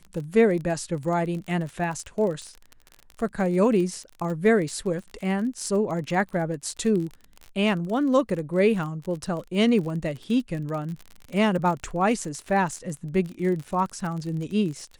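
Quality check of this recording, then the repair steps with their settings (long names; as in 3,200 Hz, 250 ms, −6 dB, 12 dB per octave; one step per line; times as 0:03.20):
surface crackle 37 per second −31 dBFS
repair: click removal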